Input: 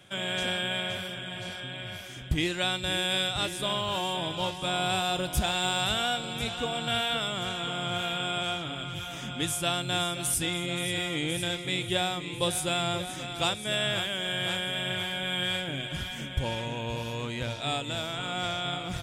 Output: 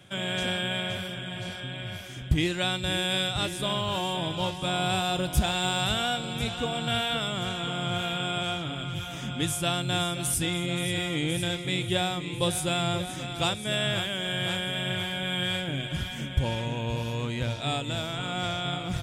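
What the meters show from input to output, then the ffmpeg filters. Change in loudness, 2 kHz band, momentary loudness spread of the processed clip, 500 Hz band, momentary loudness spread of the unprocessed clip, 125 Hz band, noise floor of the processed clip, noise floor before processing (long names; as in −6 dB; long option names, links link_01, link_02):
+1.0 dB, 0.0 dB, 6 LU, +1.0 dB, 7 LU, +5.0 dB, −37 dBFS, −39 dBFS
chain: -af "equalizer=frequency=110:width=0.45:gain=5.5"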